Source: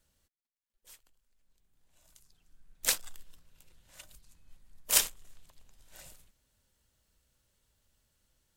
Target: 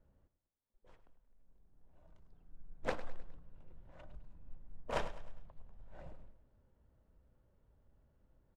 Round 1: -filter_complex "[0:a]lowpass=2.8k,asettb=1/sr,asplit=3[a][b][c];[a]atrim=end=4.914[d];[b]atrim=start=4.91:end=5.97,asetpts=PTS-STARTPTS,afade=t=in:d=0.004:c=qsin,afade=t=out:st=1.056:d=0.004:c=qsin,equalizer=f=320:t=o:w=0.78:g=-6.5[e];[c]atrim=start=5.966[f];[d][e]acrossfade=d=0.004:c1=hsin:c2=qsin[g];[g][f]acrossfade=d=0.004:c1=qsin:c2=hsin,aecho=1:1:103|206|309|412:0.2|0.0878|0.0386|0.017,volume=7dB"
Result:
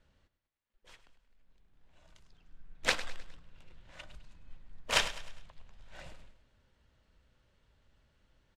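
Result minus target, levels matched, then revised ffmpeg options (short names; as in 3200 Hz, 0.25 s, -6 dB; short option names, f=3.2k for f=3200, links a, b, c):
1000 Hz band -7.0 dB
-filter_complex "[0:a]lowpass=810,asettb=1/sr,asplit=3[a][b][c];[a]atrim=end=4.914[d];[b]atrim=start=4.91:end=5.97,asetpts=PTS-STARTPTS,afade=t=in:d=0.004:c=qsin,afade=t=out:st=1.056:d=0.004:c=qsin,equalizer=f=320:t=o:w=0.78:g=-6.5[e];[c]atrim=start=5.966[f];[d][e]acrossfade=d=0.004:c1=hsin:c2=qsin[g];[g][f]acrossfade=d=0.004:c1=qsin:c2=hsin,aecho=1:1:103|206|309|412:0.2|0.0878|0.0386|0.017,volume=7dB"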